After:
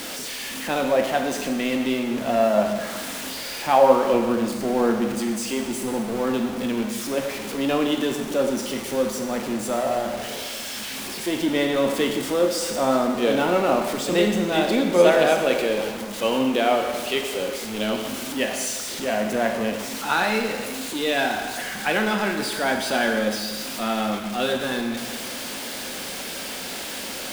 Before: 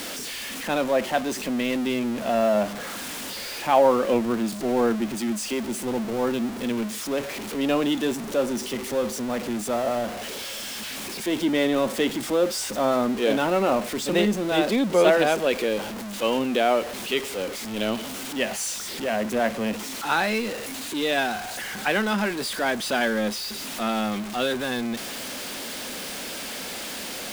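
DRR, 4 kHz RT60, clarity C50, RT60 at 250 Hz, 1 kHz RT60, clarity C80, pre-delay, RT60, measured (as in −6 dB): 3.0 dB, 1.4 s, 5.0 dB, 1.5 s, 1.5 s, 6.5 dB, 7 ms, 1.5 s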